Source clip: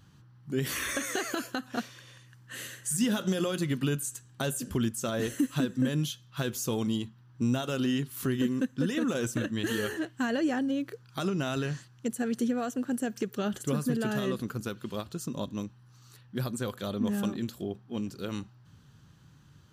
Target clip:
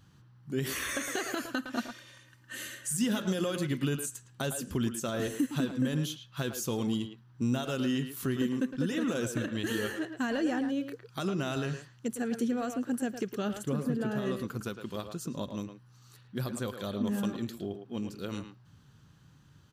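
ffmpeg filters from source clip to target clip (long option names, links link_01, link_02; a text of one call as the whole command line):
ffmpeg -i in.wav -filter_complex "[0:a]asettb=1/sr,asplit=3[link_01][link_02][link_03];[link_01]atrim=end=1.544[link_04];[link_02]atrim=start=1.54:end=2.88,asetpts=PTS-STARTPTS,afade=type=in:duration=0.004:curve=qsin,afade=type=out:start_time=1.336:duration=0.004:curve=qsin,aecho=1:1:3.3:0.66,atrim=end_sample=59094[link_05];[link_03]atrim=start=2.876[link_06];[link_04][link_05]acrossfade=duration=0.004:curve1=hsin:curve2=qsin[link_07];[link_07][link_06]acrossfade=duration=0.004:curve1=qsin:curve2=hsin,asplit=3[link_08][link_09][link_10];[link_08]afade=type=out:start_time=13.64:duration=0.02[link_11];[link_09]highshelf=frequency=2200:gain=-9.5,afade=type=in:start_time=13.64:duration=0.02,afade=type=out:start_time=14.25:duration=0.02[link_12];[link_10]afade=type=in:start_time=14.25:duration=0.02[link_13];[link_11][link_12][link_13]amix=inputs=3:normalize=0,asplit=2[link_14][link_15];[link_15]adelay=110,highpass=300,lowpass=3400,asoftclip=type=hard:threshold=-26dB,volume=-7dB[link_16];[link_14][link_16]amix=inputs=2:normalize=0,volume=-2dB" out.wav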